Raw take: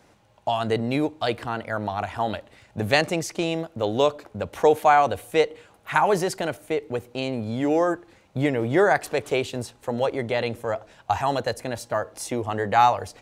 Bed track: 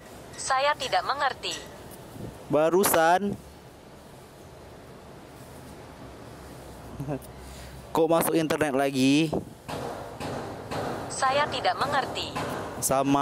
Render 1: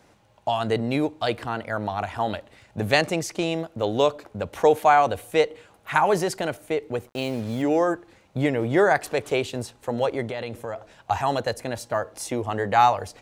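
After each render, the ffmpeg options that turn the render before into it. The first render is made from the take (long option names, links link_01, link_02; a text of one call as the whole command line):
ffmpeg -i in.wav -filter_complex "[0:a]asettb=1/sr,asplit=3[link_01][link_02][link_03];[link_01]atrim=end=7.074[link_04];[link_02]atrim=start=7.07:end=7.62,asetpts=PTS-STARTPTS,afade=type=in:duration=0.004:curve=qsin,afade=type=out:start_time=0.546:duration=0.004:curve=qsin,acrusher=bits=6:mix=0:aa=0.5[link_05];[link_03]atrim=start=7.616[link_06];[link_04][link_05]acrossfade=duration=0.004:curve1=hsin:curve2=qsin[link_07];[link_07][link_06]acrossfade=duration=0.004:curve1=qsin:curve2=hsin,asettb=1/sr,asplit=3[link_08][link_09][link_10];[link_08]atrim=end=10.264[link_11];[link_09]atrim=start=10.26:end=11.11,asetpts=PTS-STARTPTS,afade=type=in:duration=0.004:curve=qsin,afade=type=out:start_time=0.846:duration=0.004:curve=qsin,acompressor=threshold=-27dB:ratio=6:attack=3.2:release=140:knee=1:detection=peak[link_12];[link_10]atrim=start=11.106[link_13];[link_11][link_12]acrossfade=duration=0.004:curve1=hsin:curve2=qsin[link_14];[link_14][link_13]acrossfade=duration=0.004:curve1=qsin:curve2=hsin" out.wav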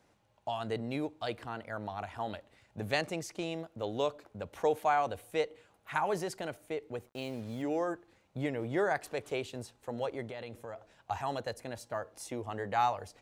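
ffmpeg -i in.wav -af "volume=-11.5dB" out.wav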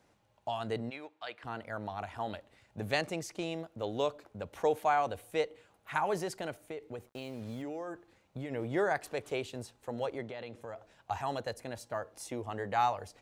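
ffmpeg -i in.wav -filter_complex "[0:a]asplit=3[link_01][link_02][link_03];[link_01]afade=type=out:start_time=0.89:duration=0.02[link_04];[link_02]bandpass=frequency=1900:width_type=q:width=0.85,afade=type=in:start_time=0.89:duration=0.02,afade=type=out:start_time=1.43:duration=0.02[link_05];[link_03]afade=type=in:start_time=1.43:duration=0.02[link_06];[link_04][link_05][link_06]amix=inputs=3:normalize=0,asplit=3[link_07][link_08][link_09];[link_07]afade=type=out:start_time=6.61:duration=0.02[link_10];[link_08]acompressor=threshold=-36dB:ratio=6:attack=3.2:release=140:knee=1:detection=peak,afade=type=in:start_time=6.61:duration=0.02,afade=type=out:start_time=8.5:duration=0.02[link_11];[link_09]afade=type=in:start_time=8.5:duration=0.02[link_12];[link_10][link_11][link_12]amix=inputs=3:normalize=0,asplit=3[link_13][link_14][link_15];[link_13]afade=type=out:start_time=10.18:duration=0.02[link_16];[link_14]highpass=110,lowpass=6300,afade=type=in:start_time=10.18:duration=0.02,afade=type=out:start_time=10.6:duration=0.02[link_17];[link_15]afade=type=in:start_time=10.6:duration=0.02[link_18];[link_16][link_17][link_18]amix=inputs=3:normalize=0" out.wav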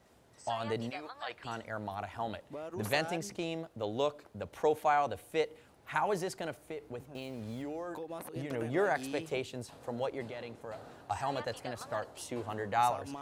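ffmpeg -i in.wav -i bed.wav -filter_complex "[1:a]volume=-20.5dB[link_01];[0:a][link_01]amix=inputs=2:normalize=0" out.wav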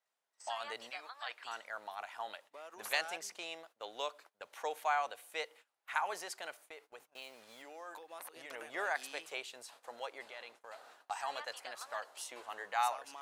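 ffmpeg -i in.wav -af "highpass=970,agate=range=-19dB:threshold=-58dB:ratio=16:detection=peak" out.wav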